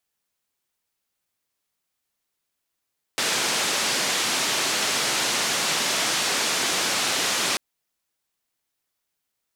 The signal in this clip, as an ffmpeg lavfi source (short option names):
-f lavfi -i "anoisesrc=c=white:d=4.39:r=44100:seed=1,highpass=f=180,lowpass=f=6500,volume=-14dB"